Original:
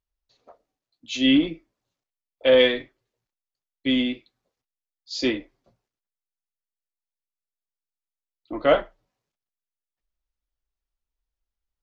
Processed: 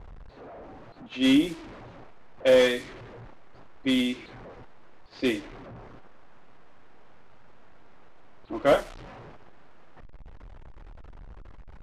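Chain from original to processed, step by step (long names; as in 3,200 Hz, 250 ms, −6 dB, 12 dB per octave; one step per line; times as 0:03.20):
linear delta modulator 64 kbit/s, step −34.5 dBFS
low-pass that shuts in the quiet parts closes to 950 Hz, open at −18 dBFS
level −2 dB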